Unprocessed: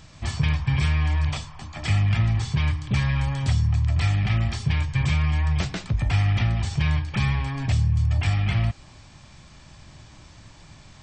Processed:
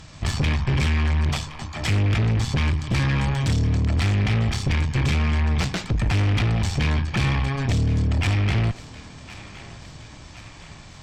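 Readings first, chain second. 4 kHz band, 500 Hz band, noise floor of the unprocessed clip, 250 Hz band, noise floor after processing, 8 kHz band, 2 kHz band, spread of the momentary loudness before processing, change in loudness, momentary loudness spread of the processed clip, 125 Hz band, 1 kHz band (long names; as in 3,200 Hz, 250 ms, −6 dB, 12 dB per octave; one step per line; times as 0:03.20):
+3.5 dB, +8.0 dB, −49 dBFS, +4.5 dB, −43 dBFS, +4.5 dB, +2.5 dB, 5 LU, +1.0 dB, 19 LU, +0.5 dB, +3.0 dB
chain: tube saturation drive 26 dB, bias 0.7
on a send: feedback echo with a high-pass in the loop 1,067 ms, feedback 59%, high-pass 320 Hz, level −15.5 dB
on the sum: level +8.5 dB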